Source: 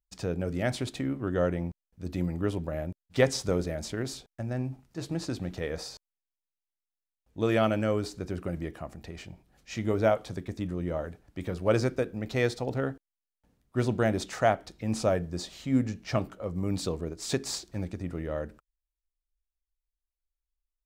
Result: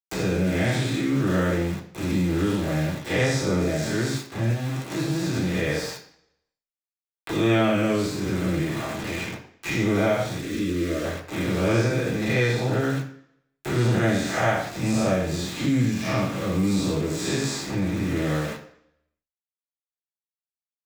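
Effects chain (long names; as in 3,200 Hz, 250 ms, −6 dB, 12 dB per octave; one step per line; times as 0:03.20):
spectrum smeared in time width 164 ms
dynamic equaliser 130 Hz, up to +5 dB, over −48 dBFS, Q 2.7
0:04.50–0:05.35: downward compressor 4 to 1, threshold −36 dBFS, peak gain reduction 8 dB
centre clipping without the shift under −45.5 dBFS
0:10.38–0:11.05: phaser with its sweep stopped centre 340 Hz, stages 4
convolution reverb RT60 0.50 s, pre-delay 3 ms, DRR −3 dB
multiband upward and downward compressor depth 70%
level +7 dB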